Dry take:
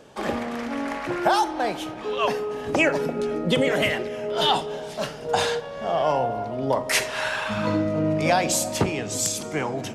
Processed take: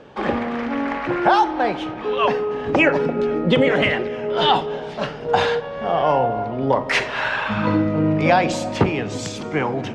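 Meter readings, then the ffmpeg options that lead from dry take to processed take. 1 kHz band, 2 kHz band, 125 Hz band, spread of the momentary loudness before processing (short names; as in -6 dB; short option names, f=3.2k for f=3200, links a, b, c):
+5.0 dB, +4.5 dB, +5.5 dB, 8 LU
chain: -af "lowpass=3k,bandreject=f=640:w=12,volume=5.5dB"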